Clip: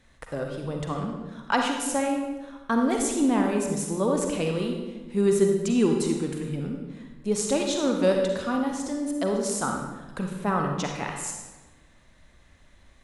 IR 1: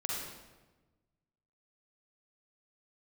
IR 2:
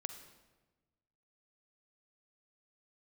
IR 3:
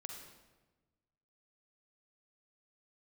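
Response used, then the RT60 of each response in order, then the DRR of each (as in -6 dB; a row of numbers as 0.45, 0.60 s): 3; 1.2, 1.2, 1.2 s; -4.0, 8.0, 2.0 dB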